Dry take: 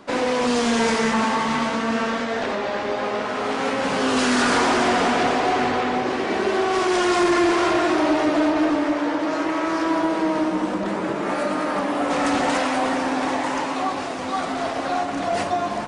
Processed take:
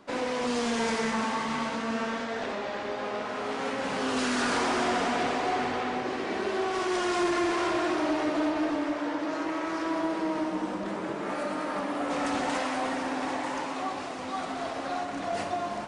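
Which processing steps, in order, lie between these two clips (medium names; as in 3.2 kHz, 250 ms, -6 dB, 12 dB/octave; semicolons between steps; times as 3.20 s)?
thinning echo 63 ms, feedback 84%, level -13 dB; trim -8.5 dB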